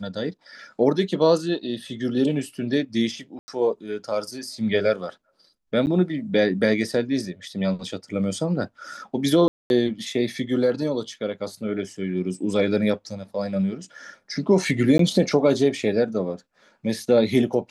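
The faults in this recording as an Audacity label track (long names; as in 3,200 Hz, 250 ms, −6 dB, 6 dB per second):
3.390000	3.480000	drop-out 90 ms
5.860000	5.870000	drop-out 9.8 ms
9.480000	9.700000	drop-out 221 ms
14.980000	14.990000	drop-out 13 ms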